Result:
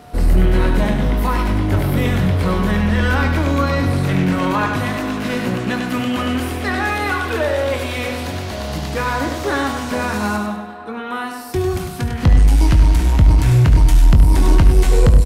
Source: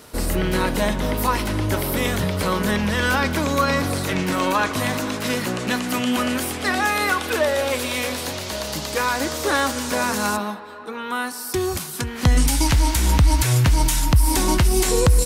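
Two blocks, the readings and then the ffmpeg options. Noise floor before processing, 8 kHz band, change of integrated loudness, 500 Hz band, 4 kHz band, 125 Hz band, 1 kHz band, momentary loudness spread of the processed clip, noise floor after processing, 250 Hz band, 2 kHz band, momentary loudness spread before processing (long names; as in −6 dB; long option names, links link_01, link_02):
−32 dBFS, −8.5 dB, +3.5 dB, +1.5 dB, −3.0 dB, +6.5 dB, +1.0 dB, 11 LU, −28 dBFS, +4.0 dB, +0.5 dB, 9 LU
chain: -filter_complex "[0:a]bass=frequency=250:gain=8,treble=frequency=4000:gain=-9,aeval=exprs='val(0)+0.00631*sin(2*PI*720*n/s)':channel_layout=same,asplit=2[link_01][link_02];[link_02]aecho=0:1:100|200|300|400:0.473|0.156|0.0515|0.017[link_03];[link_01][link_03]amix=inputs=2:normalize=0,acontrast=57,asplit=2[link_04][link_05];[link_05]aecho=0:1:22|72:0.316|0.282[link_06];[link_04][link_06]amix=inputs=2:normalize=0,volume=-6dB"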